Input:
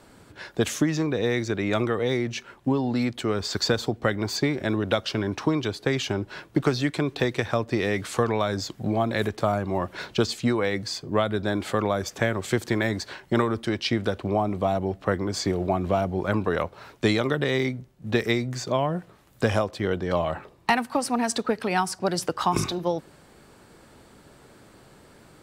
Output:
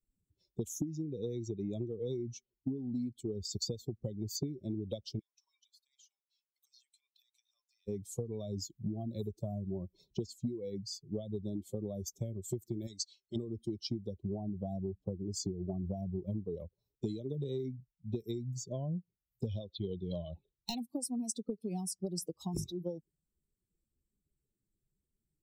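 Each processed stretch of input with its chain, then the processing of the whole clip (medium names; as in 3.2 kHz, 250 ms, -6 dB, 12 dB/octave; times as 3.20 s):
5.19–7.88 s: high-pass 1.1 kHz 24 dB/octave + compression 4:1, threshold -37 dBFS
12.87–13.36 s: low-pass 7.3 kHz + tilt shelf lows -9.5 dB
19.47–20.78 s: resonant low-pass 3.7 kHz, resonance Q 4.8 + hard clipper -11 dBFS
whole clip: expander on every frequency bin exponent 2; Chebyshev band-stop 330–6500 Hz, order 2; compression 10:1, threshold -35 dBFS; trim +2 dB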